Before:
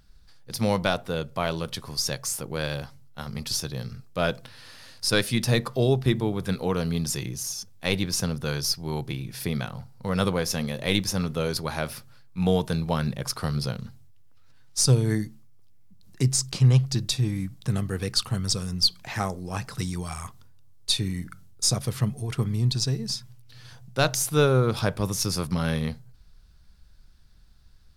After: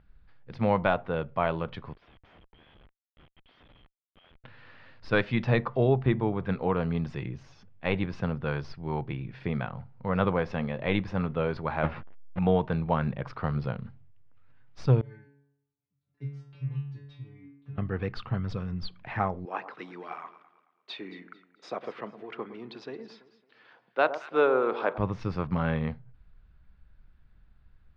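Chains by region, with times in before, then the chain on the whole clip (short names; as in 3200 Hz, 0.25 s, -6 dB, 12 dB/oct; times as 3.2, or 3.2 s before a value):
1.93–4.44 band-pass 3200 Hz, Q 17 + Schmitt trigger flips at -59.5 dBFS
5.17–5.64 LPF 7600 Hz 24 dB/oct + high shelf 3900 Hz +5.5 dB
11.83–12.39 half-waves squared off + air absorption 130 m + doubler 12 ms -3.5 dB
15.01–17.78 HPF 41 Hz + low shelf 120 Hz +7 dB + metallic resonator 140 Hz, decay 0.83 s, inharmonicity 0.002
19.45–24.98 HPF 300 Hz 24 dB/oct + echo with dull and thin repeats by turns 0.111 s, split 1200 Hz, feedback 55%, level -11 dB
whole clip: LPF 2600 Hz 24 dB/oct; dynamic EQ 880 Hz, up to +5 dB, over -40 dBFS, Q 1.1; gain -2.5 dB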